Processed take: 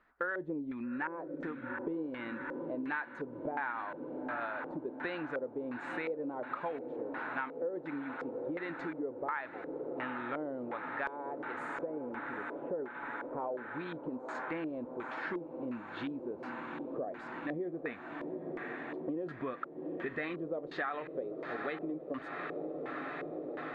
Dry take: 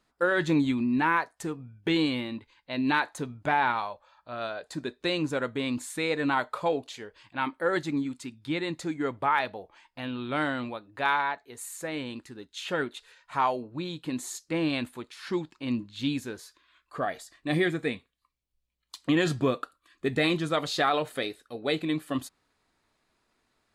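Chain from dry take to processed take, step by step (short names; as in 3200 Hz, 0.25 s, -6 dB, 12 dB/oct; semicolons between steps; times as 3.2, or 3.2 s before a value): 11.81–13.37 LPF 2200 Hz 24 dB/oct; diffused feedback echo 0.836 s, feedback 79%, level -14 dB; LFO low-pass square 1.4 Hz 520–1700 Hz; compressor 5:1, threshold -36 dBFS, peak gain reduction 18 dB; bell 120 Hz -9 dB 1.4 oct; gain +1 dB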